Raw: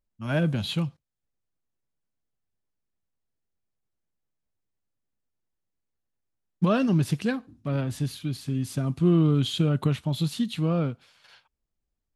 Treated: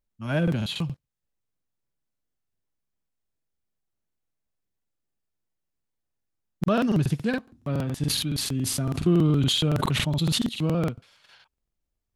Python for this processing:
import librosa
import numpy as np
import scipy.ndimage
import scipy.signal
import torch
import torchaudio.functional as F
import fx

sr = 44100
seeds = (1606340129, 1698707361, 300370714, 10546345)

y = fx.buffer_crackle(x, sr, first_s=0.43, period_s=0.14, block=2048, kind='repeat')
y = fx.sustainer(y, sr, db_per_s=28.0, at=(8.02, 10.49))